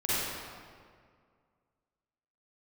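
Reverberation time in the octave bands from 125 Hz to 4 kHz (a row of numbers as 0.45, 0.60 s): 2.2, 2.2, 2.1, 1.9, 1.7, 1.3 s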